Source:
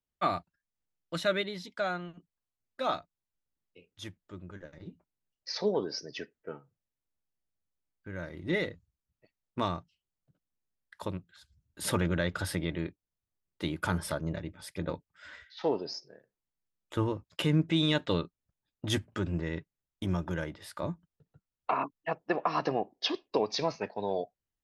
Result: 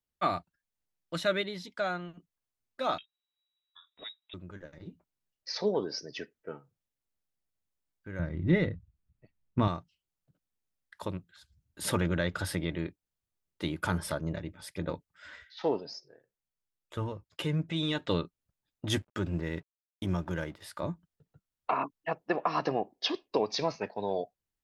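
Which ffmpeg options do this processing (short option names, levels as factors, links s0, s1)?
-filter_complex "[0:a]asettb=1/sr,asplit=3[s0][s1][s2];[s0]atrim=end=2.984[s3];[s1]atrim=start=2.98:end=4.34,asetpts=PTS-STARTPTS,afade=t=in:d=0.004:c=qsin,afade=t=out:st=1.356:d=0.004:c=qsin,lowpass=f=3300:t=q:w=0.5098,lowpass=f=3300:t=q:w=0.6013,lowpass=f=3300:t=q:w=0.9,lowpass=f=3300:t=q:w=2.563,afreqshift=-3900[s4];[s2]atrim=start=4.336[s5];[s3][s4]acrossfade=d=0.004:c1=hsin:c2=qsin[s6];[s6][s5]acrossfade=d=0.004:c1=qsin:c2=hsin,asettb=1/sr,asplit=3[s7][s8][s9];[s7]atrim=end=8.194[s10];[s8]atrim=start=8.19:end=9.68,asetpts=PTS-STARTPTS,afade=t=in:d=0.004:c=qsin,afade=t=out:st=1.486:d=0.004:c=qsin,bass=f=250:g=13,treble=f=4000:g=-12[s11];[s9]atrim=start=9.676[s12];[s10][s11]acrossfade=d=0.004:c1=hsin:c2=qsin[s13];[s13][s12]acrossfade=d=0.004:c1=qsin:c2=hsin,asplit=3[s14][s15][s16];[s14]afade=t=out:st=15.79:d=0.02[s17];[s15]flanger=delay=1.2:depth=1.5:regen=-48:speed=1.7:shape=triangular,afade=t=in:st=15.79:d=0.02,afade=t=out:st=18.04:d=0.02[s18];[s16]afade=t=in:st=18.04:d=0.02[s19];[s17][s18][s19]amix=inputs=3:normalize=0,asettb=1/sr,asplit=3[s20][s21][s22];[s20]atrim=end=18.954[s23];[s21]atrim=start=18.95:end=20.62,asetpts=PTS-STARTPTS,afade=t=in:d=0.004:c=qsin,afade=t=out:st=1.666:d=0.004:c=qsin,aeval=exprs='sgn(val(0))*max(abs(val(0))-0.00112,0)':c=same[s24];[s22]atrim=start=20.616[s25];[s23][s24]acrossfade=d=0.004:c1=hsin:c2=qsin[s26];[s26][s25]acrossfade=d=0.004:c1=qsin:c2=hsin"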